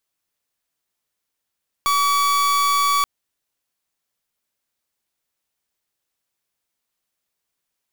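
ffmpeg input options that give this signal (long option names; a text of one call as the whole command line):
ffmpeg -f lavfi -i "aevalsrc='0.126*(2*lt(mod(1140*t,1),0.42)-1)':duration=1.18:sample_rate=44100" out.wav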